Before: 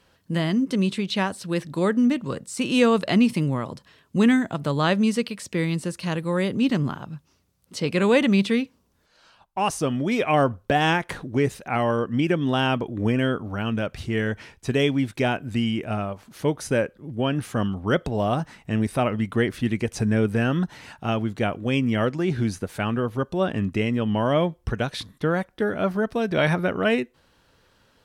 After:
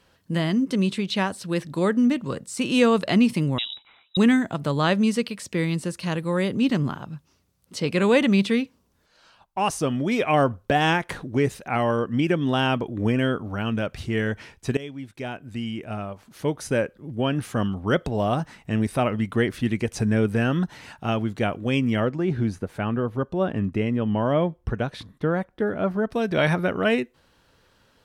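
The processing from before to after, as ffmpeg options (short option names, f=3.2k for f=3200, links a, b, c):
-filter_complex "[0:a]asettb=1/sr,asplit=3[a][b][c];[a]atrim=end=3.584[d];[b]atrim=start=3.58:end=4.17,asetpts=PTS-STARTPTS,afade=t=in:d=0.004:c=qsin,afade=t=out:st=0.586:d=0.004:c=qsin,lowpass=f=3.4k:t=q:w=0.5098,lowpass=f=3.4k:t=q:w=0.6013,lowpass=f=3.4k:t=q:w=0.9,lowpass=f=3.4k:t=q:w=2.563,afreqshift=-4000[e];[c]atrim=start=4.166[f];[d][e]acrossfade=d=0.004:c1=hsin:c2=qsin[g];[g][f]acrossfade=d=0.004:c1=qsin:c2=hsin,asettb=1/sr,asplit=3[h][i][j];[h]atrim=end=22.004[k];[i]atrim=start=22:end=26.12,asetpts=PTS-STARTPTS,afade=t=in:d=0.004:c=qsin,afade=t=out:st=4.116:d=0.004:c=qsin,highshelf=f=2.5k:g=-11[l];[j]atrim=start=26.116[m];[k][l]acrossfade=d=0.004:c1=hsin:c2=qsin[n];[n][m]acrossfade=d=0.004:c1=qsin:c2=hsin,asplit=2[o][p];[o]atrim=end=14.77,asetpts=PTS-STARTPTS,afade=t=out:st=14.766:d=0.004:c=hsin:silence=0.141254[q];[p]atrim=start=14.77,asetpts=PTS-STARTPTS,afade=t=in:d=2.22:silence=0.141254[r];[q][r]concat=n=2:v=0:a=1"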